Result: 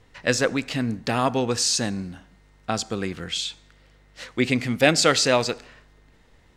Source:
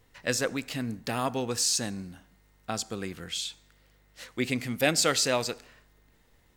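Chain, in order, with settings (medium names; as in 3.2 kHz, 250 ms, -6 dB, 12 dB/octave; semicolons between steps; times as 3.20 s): distance through air 57 m; trim +7.5 dB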